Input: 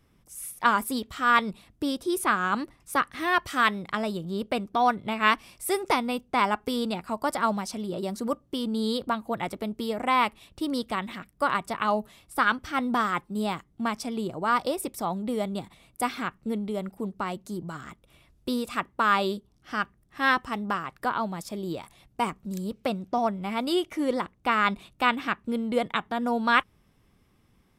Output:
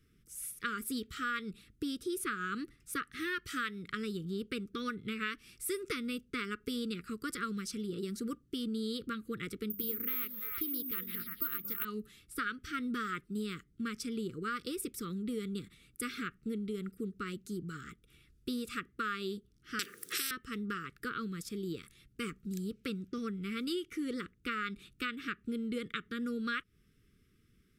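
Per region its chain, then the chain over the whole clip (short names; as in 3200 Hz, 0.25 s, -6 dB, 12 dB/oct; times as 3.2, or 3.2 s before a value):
9.7–11.85 notches 50/100/150/200 Hz + delay with a stepping band-pass 0.113 s, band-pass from 230 Hz, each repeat 1.4 oct, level -5 dB + careless resampling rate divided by 3×, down filtered, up zero stuff
19.79–20.31 resonant high-pass 570 Hz, resonance Q 3.7 + high shelf 4200 Hz +10.5 dB + spectral compressor 10:1
whole clip: elliptic band-stop 450–1300 Hz, stop band 40 dB; compressor 6:1, threshold -29 dBFS; gain -4 dB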